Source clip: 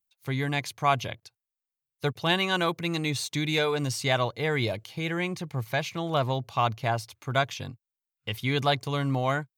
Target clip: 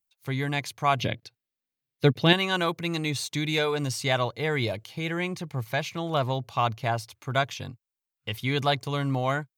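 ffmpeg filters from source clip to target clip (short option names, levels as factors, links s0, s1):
-filter_complex "[0:a]asettb=1/sr,asplit=3[s0][s1][s2];[s0]atrim=end=0.994[s3];[s1]atrim=start=0.99:end=2.33,asetpts=PTS-STARTPTS,afade=t=in:d=0.004:c=qsin,afade=t=out:st=1.336:d=0.004:c=qsin,equalizer=f=125:t=o:w=1:g=6,equalizer=f=250:t=o:w=1:g=11,equalizer=f=500:t=o:w=1:g=5,equalizer=f=1000:t=o:w=1:g=-3,equalizer=f=2000:t=o:w=1:g=5,equalizer=f=4000:t=o:w=1:g=5,equalizer=f=8000:t=o:w=1:g=-4[s4];[s2]atrim=start=2.326[s5];[s3][s4]acrossfade=d=0.004:c1=hsin:c2=qsin[s6];[s6][s5]acrossfade=d=0.004:c1=qsin:c2=hsin"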